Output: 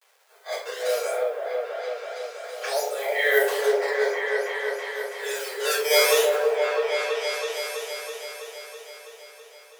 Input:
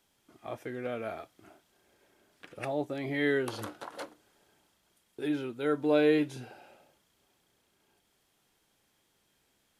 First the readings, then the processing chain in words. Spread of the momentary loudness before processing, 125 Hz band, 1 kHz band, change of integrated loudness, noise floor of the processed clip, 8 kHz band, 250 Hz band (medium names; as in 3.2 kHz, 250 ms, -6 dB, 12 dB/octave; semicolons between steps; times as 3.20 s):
20 LU, under -40 dB, +11.5 dB, +6.5 dB, -51 dBFS, +24.5 dB, under -10 dB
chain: decimation with a swept rate 9×, swing 160% 0.55 Hz; vibrato 0.47 Hz 7.3 cents; simulated room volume 67 m³, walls mixed, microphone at 2.9 m; level-controlled noise filter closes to 3 kHz, open at -17 dBFS; bit crusher 10-bit; modulation noise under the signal 30 dB; Chebyshev high-pass 420 Hz, order 8; treble shelf 4 kHz +7.5 dB; delay with an opening low-pass 327 ms, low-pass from 750 Hz, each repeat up 1 oct, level 0 dB; trim -3 dB